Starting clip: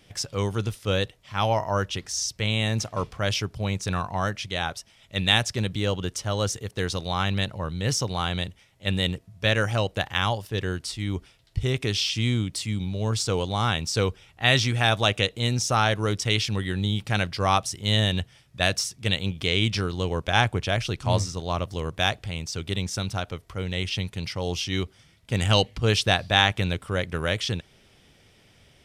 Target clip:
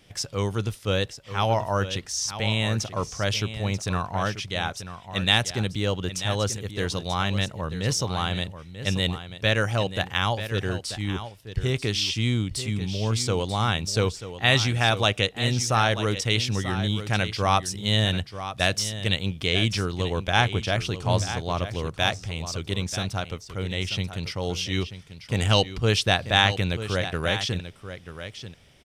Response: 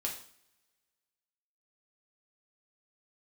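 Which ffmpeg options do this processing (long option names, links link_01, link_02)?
-af "aecho=1:1:937:0.266"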